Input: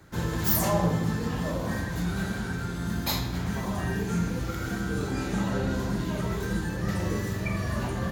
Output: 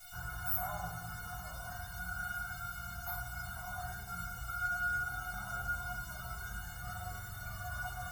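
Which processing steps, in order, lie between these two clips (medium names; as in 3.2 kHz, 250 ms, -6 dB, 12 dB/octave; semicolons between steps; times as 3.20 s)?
FFT filter 130 Hz 0 dB, 250 Hz -12 dB, 550 Hz -9 dB, 1.3 kHz +12 dB, 2.5 kHz -17 dB, 6.4 kHz -26 dB, 13 kHz -1 dB; in parallel at -5 dB: word length cut 6-bit, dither triangular; on the sum: feedback comb 720 Hz, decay 0.17 s, harmonics all, mix 100%; trim +4.5 dB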